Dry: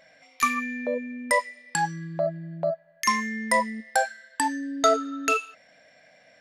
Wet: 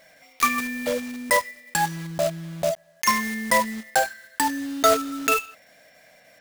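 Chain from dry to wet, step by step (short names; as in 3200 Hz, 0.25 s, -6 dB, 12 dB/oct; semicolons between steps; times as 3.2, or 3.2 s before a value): block floating point 3-bit; gain +2 dB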